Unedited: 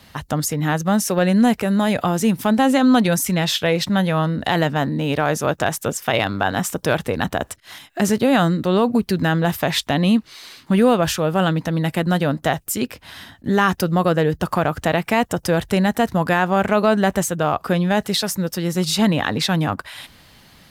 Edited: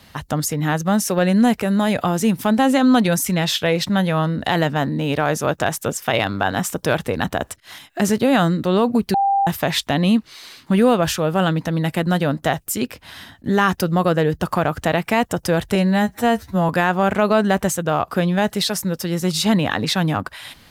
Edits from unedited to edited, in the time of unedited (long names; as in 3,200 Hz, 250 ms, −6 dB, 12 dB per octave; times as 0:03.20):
0:09.14–0:09.47: beep over 792 Hz −14 dBFS
0:15.75–0:16.22: time-stretch 2×